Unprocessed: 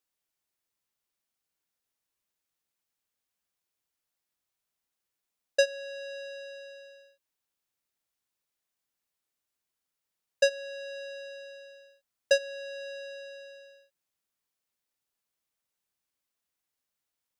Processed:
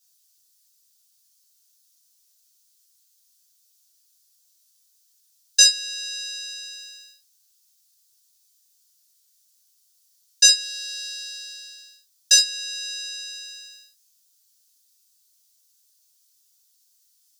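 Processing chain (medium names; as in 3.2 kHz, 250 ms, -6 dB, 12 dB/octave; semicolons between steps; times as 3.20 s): 10.61–12.36 s: partial rectifier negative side -3 dB; Bessel high-pass 1.7 kHz, order 4; resonant high shelf 3.4 kHz +13.5 dB, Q 1.5; gated-style reverb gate 90 ms falling, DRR -4.5 dB; trim +2.5 dB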